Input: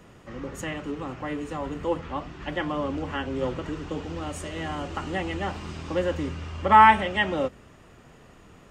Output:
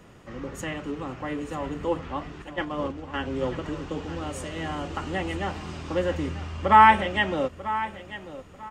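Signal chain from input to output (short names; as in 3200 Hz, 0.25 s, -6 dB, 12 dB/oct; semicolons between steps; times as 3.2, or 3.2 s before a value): 2.42–3.14 gate -28 dBFS, range -9 dB; on a send: feedback echo 0.942 s, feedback 26%, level -14 dB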